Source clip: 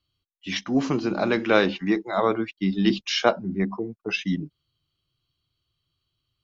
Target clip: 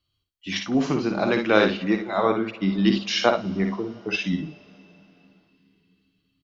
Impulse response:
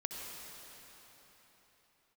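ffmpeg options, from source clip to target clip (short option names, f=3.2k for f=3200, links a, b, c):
-filter_complex "[0:a]aecho=1:1:56|75:0.501|0.178,asplit=2[a][b];[1:a]atrim=start_sample=2205,adelay=116[c];[b][c]afir=irnorm=-1:irlink=0,volume=-20dB[d];[a][d]amix=inputs=2:normalize=0"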